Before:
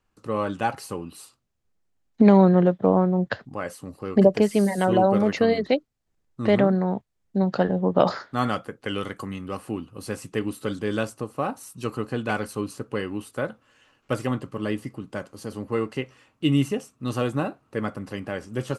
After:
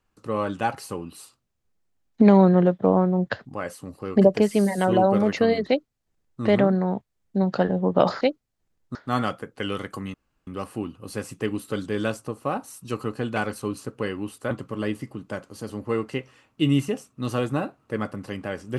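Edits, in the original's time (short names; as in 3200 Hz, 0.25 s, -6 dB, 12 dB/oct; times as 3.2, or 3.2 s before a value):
5.68–6.42 copy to 8.21
9.4 insert room tone 0.33 s
13.44–14.34 cut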